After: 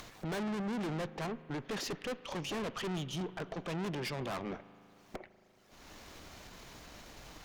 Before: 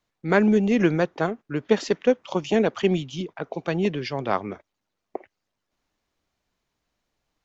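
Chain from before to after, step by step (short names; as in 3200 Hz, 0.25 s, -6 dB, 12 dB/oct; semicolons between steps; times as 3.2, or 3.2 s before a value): upward compressor, threshold -26 dBFS; tube stage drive 35 dB, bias 0.5; spring tank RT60 2.9 s, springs 38 ms, chirp 45 ms, DRR 16 dB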